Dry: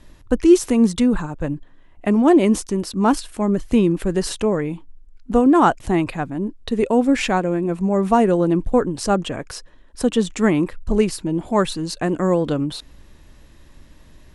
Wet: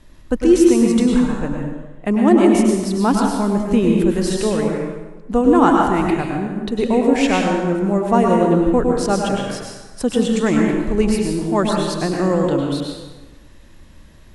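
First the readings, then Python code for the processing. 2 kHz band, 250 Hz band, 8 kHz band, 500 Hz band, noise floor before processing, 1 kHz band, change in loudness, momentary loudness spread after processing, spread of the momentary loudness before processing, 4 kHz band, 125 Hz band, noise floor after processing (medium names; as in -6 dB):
+2.0 dB, +2.5 dB, +2.0 dB, +2.0 dB, -48 dBFS, +2.0 dB, +2.0 dB, 12 LU, 13 LU, +2.0 dB, +2.0 dB, -43 dBFS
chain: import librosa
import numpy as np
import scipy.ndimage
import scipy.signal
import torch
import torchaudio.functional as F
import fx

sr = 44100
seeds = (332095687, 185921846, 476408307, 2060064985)

y = fx.rev_plate(x, sr, seeds[0], rt60_s=1.2, hf_ratio=0.75, predelay_ms=90, drr_db=-0.5)
y = F.gain(torch.from_numpy(y), -1.0).numpy()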